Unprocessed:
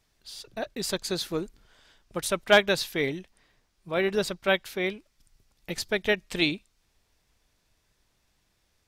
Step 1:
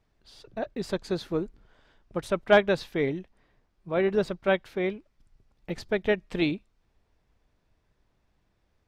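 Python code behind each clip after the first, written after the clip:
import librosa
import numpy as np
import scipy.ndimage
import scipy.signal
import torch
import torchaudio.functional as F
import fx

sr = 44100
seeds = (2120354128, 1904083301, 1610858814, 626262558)

y = fx.lowpass(x, sr, hz=1000.0, slope=6)
y = y * 10.0 ** (2.5 / 20.0)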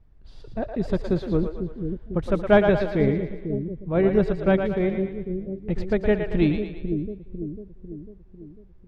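y = fx.riaa(x, sr, side='playback')
y = fx.echo_split(y, sr, split_hz=420.0, low_ms=498, high_ms=114, feedback_pct=52, wet_db=-6.0)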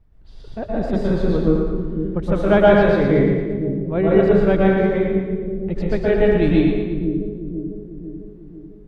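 y = fx.rev_plate(x, sr, seeds[0], rt60_s=0.85, hf_ratio=0.6, predelay_ms=110, drr_db=-4.5)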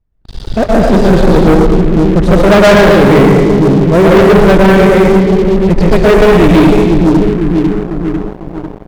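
y = fx.leveller(x, sr, passes=5)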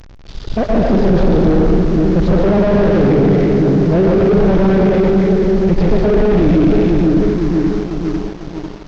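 y = fx.delta_mod(x, sr, bps=32000, step_db=-28.0)
y = y + 10.0 ** (-15.5 / 20.0) * np.pad(y, (int(159 * sr / 1000.0), 0))[:len(y)]
y = y * 10.0 ** (-4.0 / 20.0)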